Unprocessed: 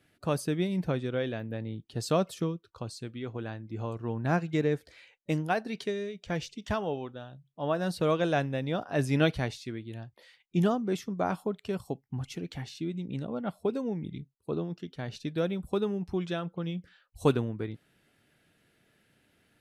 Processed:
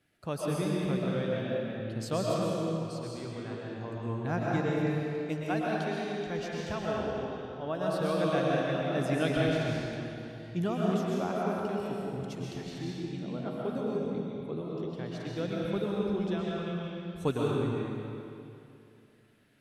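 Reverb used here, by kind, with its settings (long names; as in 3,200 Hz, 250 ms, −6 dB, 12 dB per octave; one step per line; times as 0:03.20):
comb and all-pass reverb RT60 2.7 s, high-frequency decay 0.85×, pre-delay 85 ms, DRR −4.5 dB
level −6 dB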